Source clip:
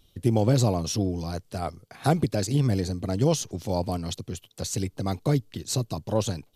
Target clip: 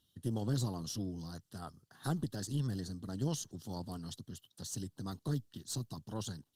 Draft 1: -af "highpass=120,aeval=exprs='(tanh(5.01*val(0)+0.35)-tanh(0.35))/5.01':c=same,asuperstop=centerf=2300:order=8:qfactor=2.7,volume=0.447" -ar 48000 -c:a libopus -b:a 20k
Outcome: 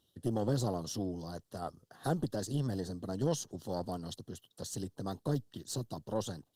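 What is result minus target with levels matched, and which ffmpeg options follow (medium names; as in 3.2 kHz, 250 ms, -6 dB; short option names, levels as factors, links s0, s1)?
500 Hz band +6.5 dB
-af "highpass=120,equalizer=f=560:t=o:w=1.2:g=-13,aeval=exprs='(tanh(5.01*val(0)+0.35)-tanh(0.35))/5.01':c=same,asuperstop=centerf=2300:order=8:qfactor=2.7,volume=0.447" -ar 48000 -c:a libopus -b:a 20k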